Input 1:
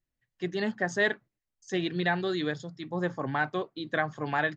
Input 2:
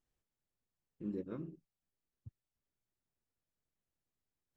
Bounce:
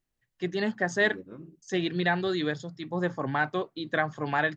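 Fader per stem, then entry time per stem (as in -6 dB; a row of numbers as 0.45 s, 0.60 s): +1.5 dB, -1.0 dB; 0.00 s, 0.00 s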